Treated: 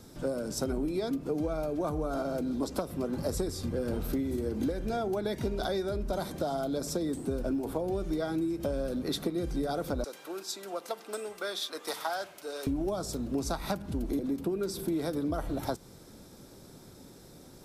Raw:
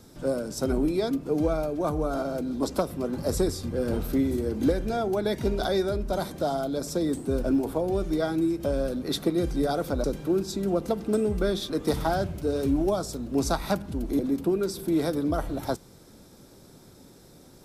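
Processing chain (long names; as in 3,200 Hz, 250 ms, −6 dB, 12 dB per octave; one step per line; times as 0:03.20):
0:10.04–0:12.67: high-pass filter 860 Hz 12 dB per octave
downward compressor, threshold −28 dBFS, peak gain reduction 10 dB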